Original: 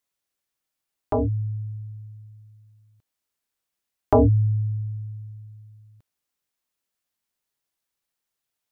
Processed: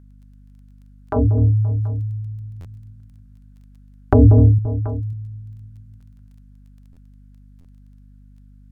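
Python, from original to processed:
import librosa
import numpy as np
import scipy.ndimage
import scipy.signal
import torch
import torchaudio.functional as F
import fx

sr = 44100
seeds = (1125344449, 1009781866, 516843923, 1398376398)

y = fx.low_shelf(x, sr, hz=340.0, db=11.0, at=(1.16, 4.4))
y = fx.echo_multitap(y, sr, ms=(186, 255, 525, 731), db=(-5.0, -12.5, -17.5, -19.0))
y = fx.add_hum(y, sr, base_hz=50, snr_db=26)
y = fx.env_lowpass_down(y, sr, base_hz=450.0, full_db=-11.5)
y = fx.peak_eq(y, sr, hz=1500.0, db=13.0, octaves=0.56)
y = fx.dmg_crackle(y, sr, seeds[0], per_s=12.0, level_db=-44.0)
y = fx.buffer_glitch(y, sr, at_s=(2.6, 6.92, 7.6), block=512, repeats=3)
y = F.gain(torch.from_numpy(y), -1.0).numpy()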